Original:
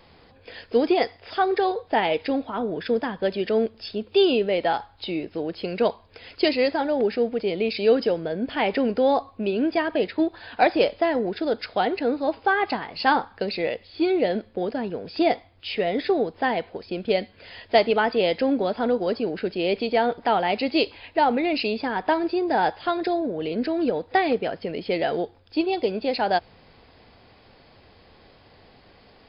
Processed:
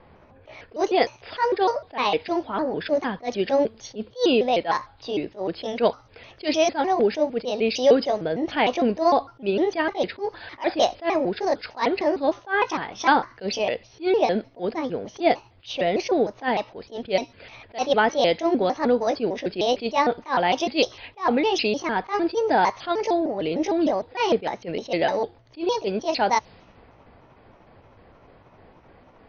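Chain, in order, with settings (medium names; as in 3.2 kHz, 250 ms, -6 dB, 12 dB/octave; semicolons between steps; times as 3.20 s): pitch shift switched off and on +4 st, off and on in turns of 152 ms; level-controlled noise filter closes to 1.6 kHz, open at -22 dBFS; attacks held to a fixed rise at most 290 dB/s; trim +2.5 dB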